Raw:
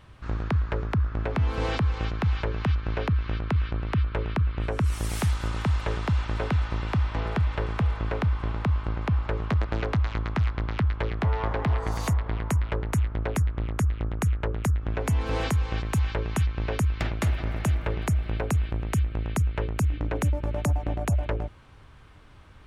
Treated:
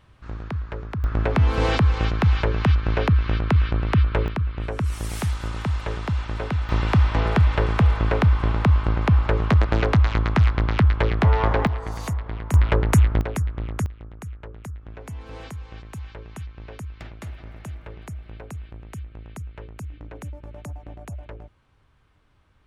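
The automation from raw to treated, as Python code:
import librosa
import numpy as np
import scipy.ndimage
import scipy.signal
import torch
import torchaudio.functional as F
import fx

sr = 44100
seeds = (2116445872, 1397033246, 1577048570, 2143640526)

y = fx.gain(x, sr, db=fx.steps((0.0, -4.0), (1.04, 6.5), (4.28, 0.0), (6.69, 7.5), (11.67, -2.0), (12.54, 9.0), (13.21, 0.0), (13.86, -11.0)))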